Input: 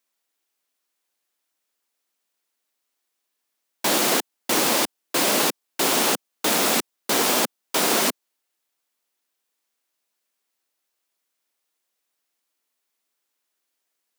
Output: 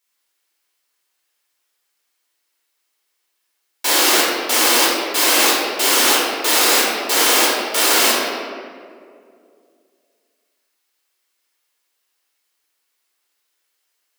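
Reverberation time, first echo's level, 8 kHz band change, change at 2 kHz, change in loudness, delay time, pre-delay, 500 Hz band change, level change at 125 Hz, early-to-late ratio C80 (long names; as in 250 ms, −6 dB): 2.3 s, no echo audible, +7.0 dB, +8.5 dB, +7.0 dB, no echo audible, 4 ms, +4.5 dB, below −10 dB, 0.5 dB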